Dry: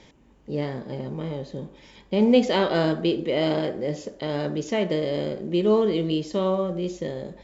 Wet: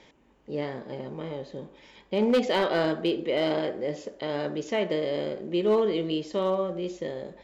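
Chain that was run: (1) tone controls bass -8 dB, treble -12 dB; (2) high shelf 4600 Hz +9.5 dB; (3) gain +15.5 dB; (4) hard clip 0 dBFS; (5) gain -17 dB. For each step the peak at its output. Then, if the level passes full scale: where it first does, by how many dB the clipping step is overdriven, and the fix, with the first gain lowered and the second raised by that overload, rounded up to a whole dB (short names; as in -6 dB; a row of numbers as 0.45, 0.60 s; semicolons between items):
-8.5, -8.0, +7.5, 0.0, -17.0 dBFS; step 3, 7.5 dB; step 3 +7.5 dB, step 5 -9 dB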